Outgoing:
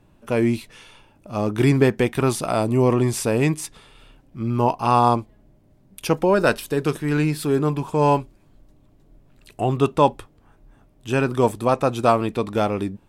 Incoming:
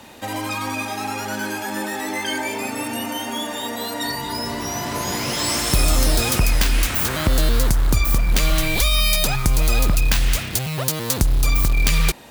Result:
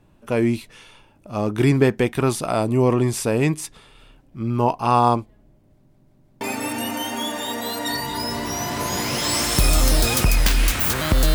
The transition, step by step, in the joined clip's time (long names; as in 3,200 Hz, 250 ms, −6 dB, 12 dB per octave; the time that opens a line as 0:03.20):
outgoing
0:05.73: stutter in place 0.17 s, 4 plays
0:06.41: continue with incoming from 0:02.56